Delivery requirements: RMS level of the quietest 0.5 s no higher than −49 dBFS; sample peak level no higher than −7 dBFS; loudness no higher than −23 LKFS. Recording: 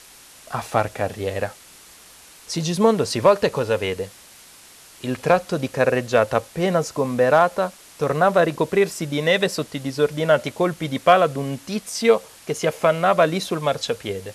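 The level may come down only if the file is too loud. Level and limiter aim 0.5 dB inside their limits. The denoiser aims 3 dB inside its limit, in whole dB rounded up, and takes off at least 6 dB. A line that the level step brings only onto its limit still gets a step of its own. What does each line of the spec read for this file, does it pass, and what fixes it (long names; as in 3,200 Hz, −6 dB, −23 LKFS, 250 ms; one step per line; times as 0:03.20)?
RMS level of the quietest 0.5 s −47 dBFS: out of spec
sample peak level −4.5 dBFS: out of spec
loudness −21.0 LKFS: out of spec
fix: level −2.5 dB
brickwall limiter −7.5 dBFS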